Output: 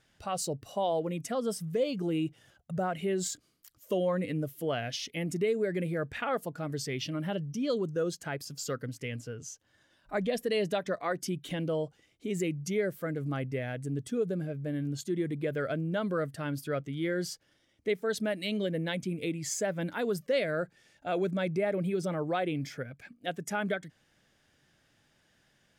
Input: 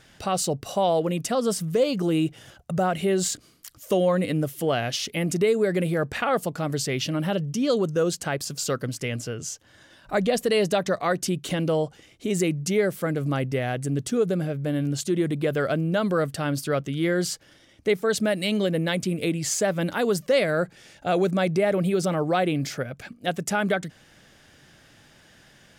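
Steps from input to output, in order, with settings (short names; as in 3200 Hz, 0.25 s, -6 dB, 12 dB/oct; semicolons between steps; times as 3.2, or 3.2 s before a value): spectral noise reduction 7 dB; gain -7.5 dB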